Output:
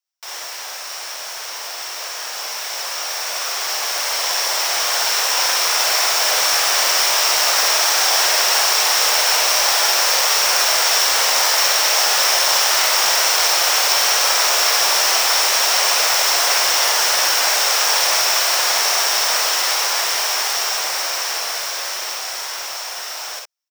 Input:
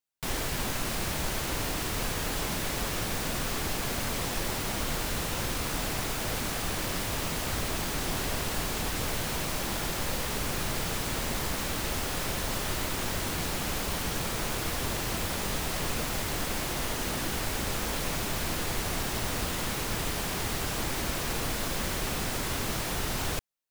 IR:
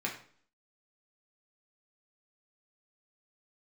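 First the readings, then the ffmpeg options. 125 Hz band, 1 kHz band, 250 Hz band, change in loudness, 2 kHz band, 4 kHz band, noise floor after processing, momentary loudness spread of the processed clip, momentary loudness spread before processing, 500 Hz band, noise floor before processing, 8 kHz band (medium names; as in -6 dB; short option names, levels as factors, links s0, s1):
under -35 dB, +14.5 dB, under -10 dB, +16.5 dB, +15.0 dB, +19.0 dB, -30 dBFS, 13 LU, 0 LU, +9.0 dB, -33 dBFS, +17.5 dB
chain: -filter_complex "[0:a]equalizer=f=11000:w=5.6:g=-11,dynaudnorm=f=780:g=11:m=5.96,highpass=f=610:w=0.5412,highpass=f=610:w=1.3066,equalizer=f=5500:w=5.6:g=13,asplit=2[s0][s1];[s1]aecho=0:1:49|62:0.562|0.596[s2];[s0][s2]amix=inputs=2:normalize=0"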